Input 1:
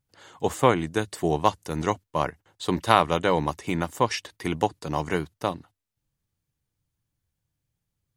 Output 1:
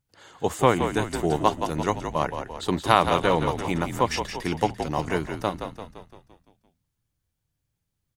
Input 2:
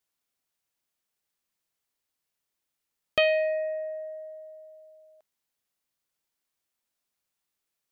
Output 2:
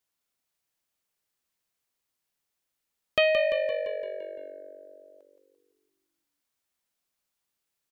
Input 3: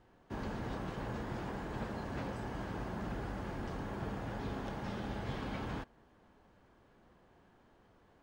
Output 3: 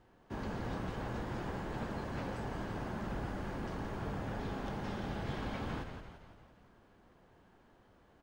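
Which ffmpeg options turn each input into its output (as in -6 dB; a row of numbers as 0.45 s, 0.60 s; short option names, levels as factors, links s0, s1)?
-filter_complex "[0:a]asplit=8[s0][s1][s2][s3][s4][s5][s6][s7];[s1]adelay=171,afreqshift=-48,volume=0.422[s8];[s2]adelay=342,afreqshift=-96,volume=0.232[s9];[s3]adelay=513,afreqshift=-144,volume=0.127[s10];[s4]adelay=684,afreqshift=-192,volume=0.07[s11];[s5]adelay=855,afreqshift=-240,volume=0.0385[s12];[s6]adelay=1026,afreqshift=-288,volume=0.0211[s13];[s7]adelay=1197,afreqshift=-336,volume=0.0116[s14];[s0][s8][s9][s10][s11][s12][s13][s14]amix=inputs=8:normalize=0"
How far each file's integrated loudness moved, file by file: +1.0 LU, +0.5 LU, +0.5 LU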